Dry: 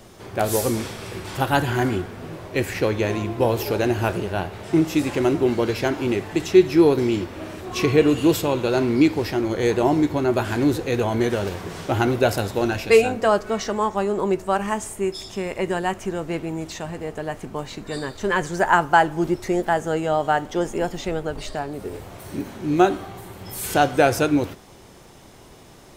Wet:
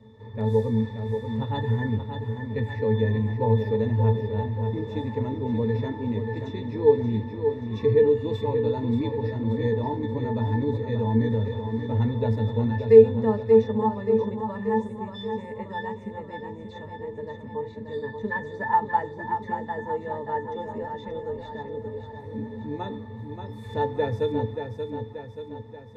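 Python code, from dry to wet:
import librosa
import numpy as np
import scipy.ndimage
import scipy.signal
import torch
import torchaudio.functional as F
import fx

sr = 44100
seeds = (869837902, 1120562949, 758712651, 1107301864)

y = fx.octave_resonator(x, sr, note='A', decay_s=0.15)
y = fx.echo_feedback(y, sr, ms=581, feedback_pct=54, wet_db=-7)
y = y * librosa.db_to_amplitude(6.0)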